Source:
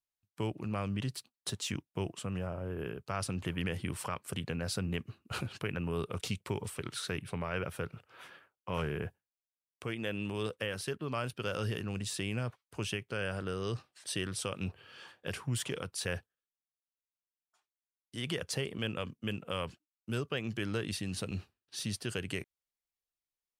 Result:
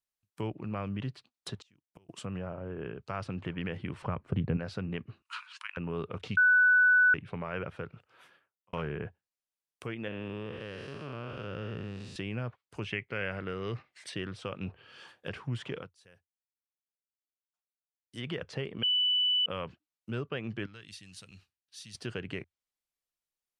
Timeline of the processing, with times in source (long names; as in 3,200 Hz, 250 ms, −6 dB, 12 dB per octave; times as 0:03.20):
0:01.62–0:02.09: gate with flip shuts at −40 dBFS, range −31 dB
0:04.02–0:04.57: spectral tilt −3.5 dB per octave
0:05.22–0:05.77: linear-phase brick-wall band-pass 900–11,000 Hz
0:06.37–0:07.14: beep over 1,490 Hz −18.5 dBFS
0:07.64–0:08.73: fade out
0:10.08–0:12.16: spectrum smeared in time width 351 ms
0:12.87–0:14.14: parametric band 2,100 Hz +14.5 dB 0.37 octaves
0:15.78–0:18.20: duck −24 dB, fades 0.13 s
0:18.83–0:19.46: beep over 2,980 Hz −20 dBFS
0:20.66–0:21.95: guitar amp tone stack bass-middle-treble 5-5-5
whole clip: treble cut that deepens with the level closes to 2,700 Hz, closed at −35 dBFS; parametric band 85 Hz −7 dB 0.22 octaves